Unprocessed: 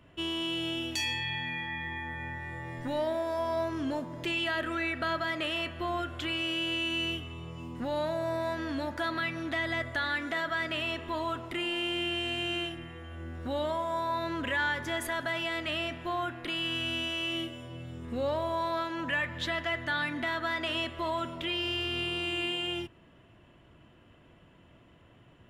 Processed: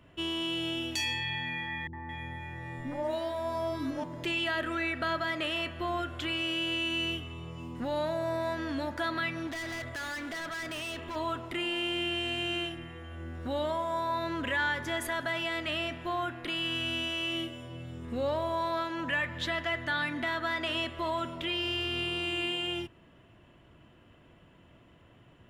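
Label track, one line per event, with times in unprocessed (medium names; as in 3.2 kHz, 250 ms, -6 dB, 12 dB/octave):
1.870000	4.040000	three bands offset in time lows, mids, highs 60/220 ms, splits 420/1500 Hz
9.470000	11.160000	hard clipper -35.5 dBFS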